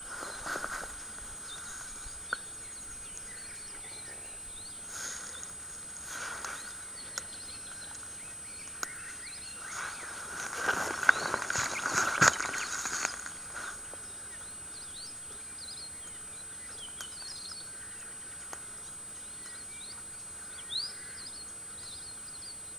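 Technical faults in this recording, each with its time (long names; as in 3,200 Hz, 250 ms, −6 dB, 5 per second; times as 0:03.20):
surface crackle 24 per second −45 dBFS
whistle 8,100 Hz −42 dBFS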